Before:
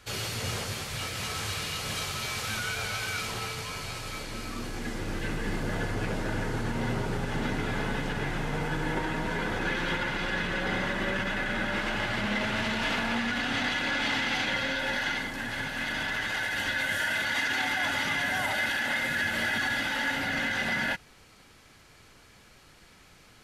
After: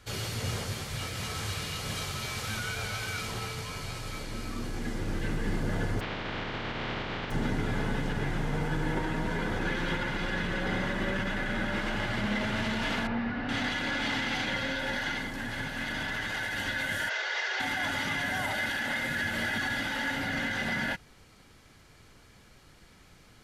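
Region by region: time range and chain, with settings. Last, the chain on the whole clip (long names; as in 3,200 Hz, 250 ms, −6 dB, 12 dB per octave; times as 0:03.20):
0:05.99–0:07.30: compressing power law on the bin magnitudes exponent 0.22 + low-pass filter 3,300 Hz 24 dB per octave
0:13.07–0:13.49: linear delta modulator 32 kbit/s, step −40 dBFS + high-frequency loss of the air 290 metres + notch filter 3,300 Hz, Q 17
0:17.09–0:17.60: variable-slope delta modulation 32 kbit/s + Butterworth high-pass 370 Hz 96 dB per octave
whole clip: low-shelf EQ 350 Hz +5.5 dB; notch filter 2,600 Hz, Q 24; level −3 dB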